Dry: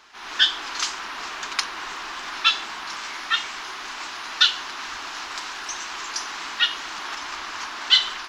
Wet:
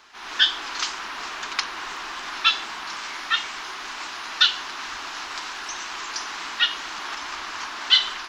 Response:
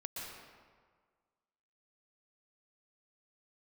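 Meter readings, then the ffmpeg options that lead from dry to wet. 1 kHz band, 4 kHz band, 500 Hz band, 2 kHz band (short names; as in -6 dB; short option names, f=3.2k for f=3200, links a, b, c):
0.0 dB, -0.5 dB, 0.0 dB, 0.0 dB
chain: -filter_complex "[0:a]acrossover=split=6600[a][b];[b]acompressor=threshold=-46dB:ratio=4:attack=1:release=60[c];[a][c]amix=inputs=2:normalize=0"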